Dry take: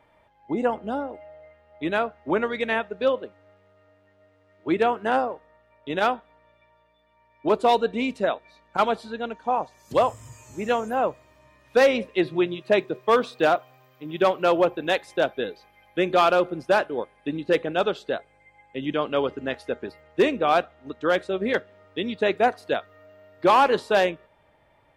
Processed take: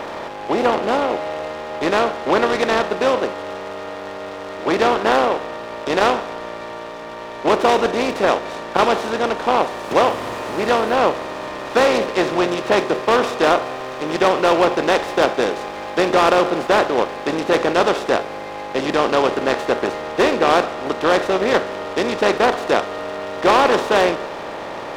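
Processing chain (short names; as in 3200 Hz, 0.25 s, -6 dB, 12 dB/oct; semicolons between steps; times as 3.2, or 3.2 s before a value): per-bin compression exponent 0.4; noise-modulated delay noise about 1700 Hz, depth 0.037 ms; gain -1 dB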